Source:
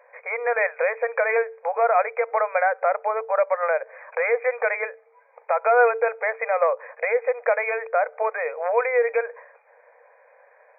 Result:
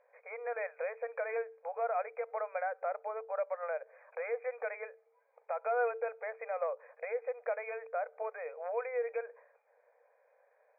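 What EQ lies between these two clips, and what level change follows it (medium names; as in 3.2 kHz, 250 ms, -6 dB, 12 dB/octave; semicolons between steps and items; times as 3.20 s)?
distance through air 250 m; dynamic bell 320 Hz, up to -7 dB, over -44 dBFS, Q 3.2; ten-band graphic EQ 500 Hz -7 dB, 1 kHz -10 dB, 2 kHz -12 dB; -3.0 dB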